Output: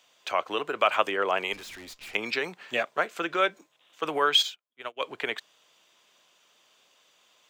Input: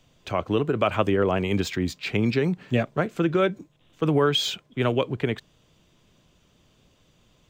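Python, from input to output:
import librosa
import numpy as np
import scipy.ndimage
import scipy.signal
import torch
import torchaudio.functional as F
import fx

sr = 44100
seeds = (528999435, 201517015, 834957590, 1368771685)

y = scipy.signal.sosfilt(scipy.signal.butter(2, 790.0, 'highpass', fs=sr, output='sos'), x)
y = fx.tube_stage(y, sr, drive_db=45.0, bias=0.75, at=(1.53, 2.15))
y = fx.upward_expand(y, sr, threshold_db=-42.0, expansion=2.5, at=(4.41, 5.0), fade=0.02)
y = y * 10.0 ** (3.5 / 20.0)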